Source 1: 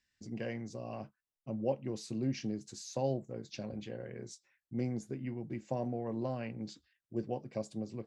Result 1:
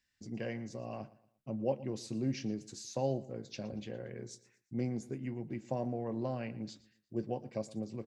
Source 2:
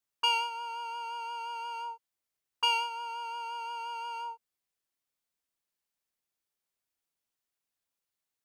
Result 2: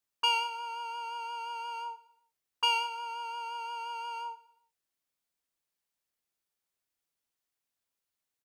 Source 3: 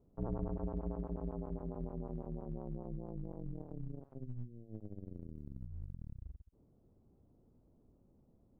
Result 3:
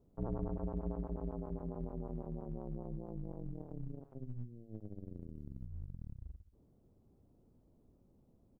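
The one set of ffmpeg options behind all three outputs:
-af "aecho=1:1:117|234|351:0.112|0.0415|0.0154"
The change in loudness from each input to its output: 0.0, 0.0, 0.0 LU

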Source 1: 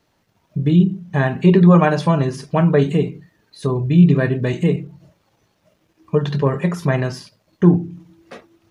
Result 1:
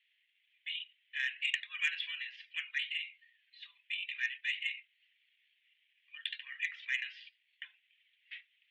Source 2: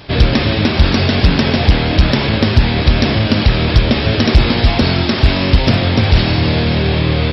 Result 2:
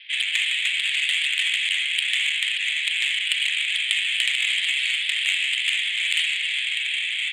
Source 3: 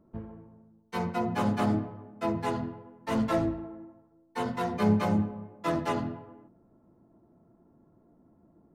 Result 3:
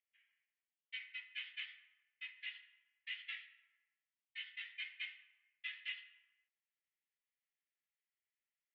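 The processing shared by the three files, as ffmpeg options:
-af "asuperpass=centerf=2500:order=8:qfactor=1.7,aeval=exprs='0.316*(cos(1*acos(clip(val(0)/0.316,-1,1)))-cos(1*PI/2))+0.0447*(cos(3*acos(clip(val(0)/0.316,-1,1)))-cos(3*PI/2))+0.00282*(cos(7*acos(clip(val(0)/0.316,-1,1)))-cos(7*PI/2))':channel_layout=same,crystalizer=i=4.5:c=0"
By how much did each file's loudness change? −20.0, −7.5, −16.5 LU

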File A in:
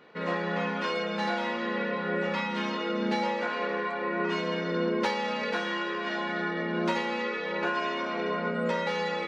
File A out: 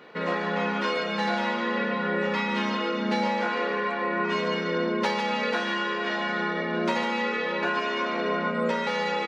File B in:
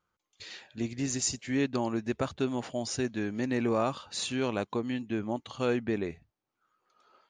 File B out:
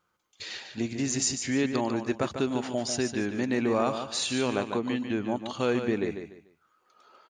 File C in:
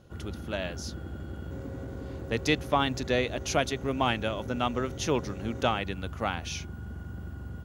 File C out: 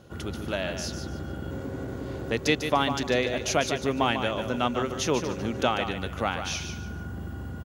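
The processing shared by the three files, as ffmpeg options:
-filter_complex "[0:a]lowshelf=frequency=81:gain=-11,asplit=2[link_01][link_02];[link_02]acompressor=threshold=-36dB:ratio=6,volume=0.5dB[link_03];[link_01][link_03]amix=inputs=2:normalize=0,aecho=1:1:147|294|441:0.398|0.111|0.0312"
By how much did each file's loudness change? +3.0, +3.0, +2.5 LU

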